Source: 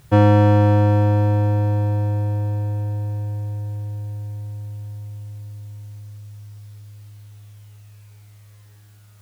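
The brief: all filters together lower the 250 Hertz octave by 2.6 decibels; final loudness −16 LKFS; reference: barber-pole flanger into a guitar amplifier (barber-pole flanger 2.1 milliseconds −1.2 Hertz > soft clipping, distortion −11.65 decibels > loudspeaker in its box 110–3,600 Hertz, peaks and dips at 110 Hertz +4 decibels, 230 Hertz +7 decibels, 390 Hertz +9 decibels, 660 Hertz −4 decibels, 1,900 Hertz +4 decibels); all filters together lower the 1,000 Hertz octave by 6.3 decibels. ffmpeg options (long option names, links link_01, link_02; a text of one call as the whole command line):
ffmpeg -i in.wav -filter_complex "[0:a]equalizer=frequency=250:width_type=o:gain=-8,equalizer=frequency=1000:width_type=o:gain=-6.5,asplit=2[link_01][link_02];[link_02]adelay=2.1,afreqshift=-1.2[link_03];[link_01][link_03]amix=inputs=2:normalize=1,asoftclip=threshold=-18.5dB,highpass=110,equalizer=frequency=110:width_type=q:width=4:gain=4,equalizer=frequency=230:width_type=q:width=4:gain=7,equalizer=frequency=390:width_type=q:width=4:gain=9,equalizer=frequency=660:width_type=q:width=4:gain=-4,equalizer=frequency=1900:width_type=q:width=4:gain=4,lowpass=frequency=3600:width=0.5412,lowpass=frequency=3600:width=1.3066,volume=12dB" out.wav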